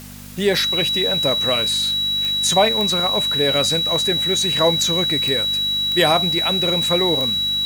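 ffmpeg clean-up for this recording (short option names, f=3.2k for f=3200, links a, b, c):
-af "adeclick=t=4,bandreject=f=49.4:t=h:w=4,bandreject=f=98.8:t=h:w=4,bandreject=f=148.2:t=h:w=4,bandreject=f=197.6:t=h:w=4,bandreject=f=247:t=h:w=4,bandreject=f=3.9k:w=30,afwtdn=0.0089"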